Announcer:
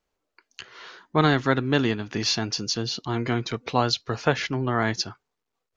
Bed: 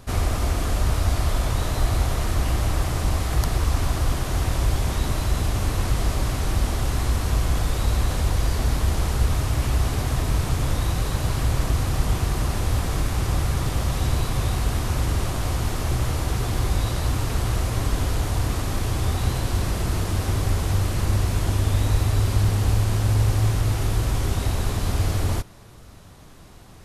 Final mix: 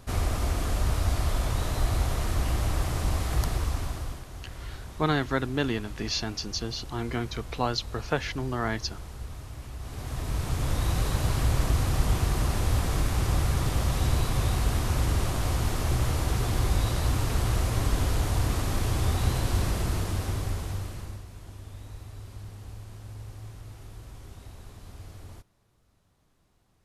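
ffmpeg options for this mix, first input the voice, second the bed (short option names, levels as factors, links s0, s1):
-filter_complex "[0:a]adelay=3850,volume=0.531[s0];[1:a]volume=3.55,afade=t=out:st=3.41:d=0.85:silence=0.211349,afade=t=in:st=9.79:d=1.19:silence=0.16788,afade=t=out:st=19.61:d=1.63:silence=0.105925[s1];[s0][s1]amix=inputs=2:normalize=0"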